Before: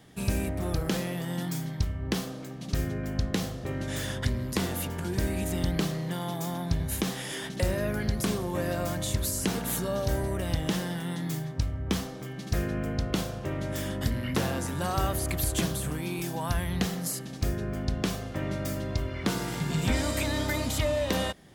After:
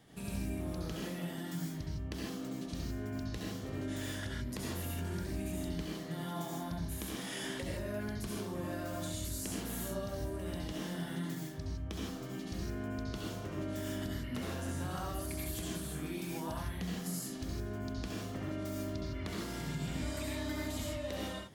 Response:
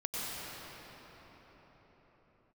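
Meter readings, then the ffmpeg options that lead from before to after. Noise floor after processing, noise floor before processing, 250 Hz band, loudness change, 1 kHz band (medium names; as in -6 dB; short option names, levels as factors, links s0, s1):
-43 dBFS, -39 dBFS, -7.5 dB, -9.0 dB, -9.5 dB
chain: -filter_complex "[0:a]acompressor=threshold=0.02:ratio=6[s0];[1:a]atrim=start_sample=2205,afade=t=out:st=0.29:d=0.01,atrim=end_sample=13230,asetrate=61740,aresample=44100[s1];[s0][s1]afir=irnorm=-1:irlink=0,volume=0.891"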